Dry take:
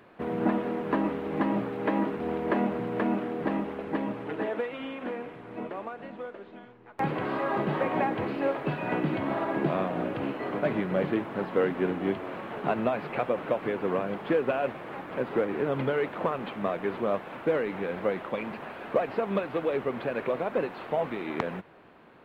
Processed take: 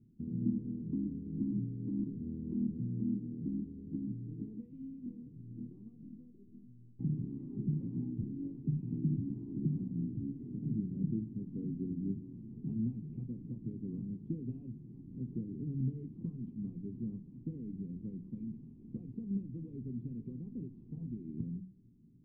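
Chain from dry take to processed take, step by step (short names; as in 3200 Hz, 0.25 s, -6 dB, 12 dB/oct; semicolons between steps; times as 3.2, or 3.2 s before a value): inverse Chebyshev low-pass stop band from 570 Hz, stop band 50 dB; reverb, pre-delay 3 ms, DRR 11.5 dB; gain +1 dB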